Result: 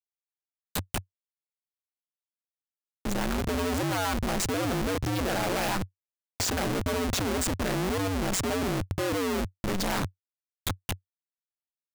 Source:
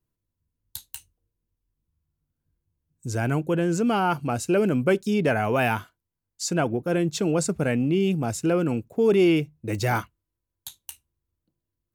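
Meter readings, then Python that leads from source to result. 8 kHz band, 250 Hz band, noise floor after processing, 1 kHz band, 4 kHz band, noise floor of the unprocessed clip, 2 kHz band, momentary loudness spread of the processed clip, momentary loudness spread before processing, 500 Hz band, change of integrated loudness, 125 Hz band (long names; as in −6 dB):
+1.5 dB, −6.5 dB, below −85 dBFS, −3.0 dB, +3.0 dB, −85 dBFS, −3.0 dB, 8 LU, 19 LU, −7.5 dB, −5.5 dB, −5.0 dB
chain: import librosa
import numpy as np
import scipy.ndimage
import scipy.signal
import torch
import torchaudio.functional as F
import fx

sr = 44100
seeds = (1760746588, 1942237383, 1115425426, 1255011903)

y = fx.cheby_harmonics(x, sr, harmonics=(5, 8), levels_db=(-25, -35), full_scale_db=-10.0)
y = fx.schmitt(y, sr, flips_db=-36.0)
y = y * np.sin(2.0 * np.pi * 93.0 * np.arange(len(y)) / sr)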